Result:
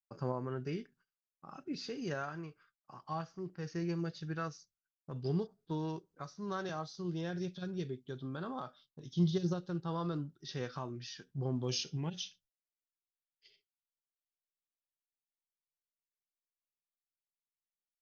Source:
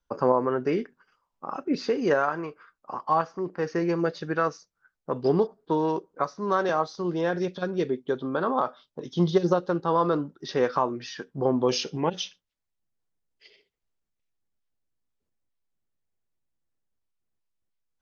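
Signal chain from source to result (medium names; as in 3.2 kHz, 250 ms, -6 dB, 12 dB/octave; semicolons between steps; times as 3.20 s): ten-band graphic EQ 125 Hz +3 dB, 250 Hz -7 dB, 500 Hz -12 dB, 1 kHz -11 dB, 2 kHz -6 dB; harmonic-percussive split harmonic +5 dB; expander -55 dBFS; trim -7 dB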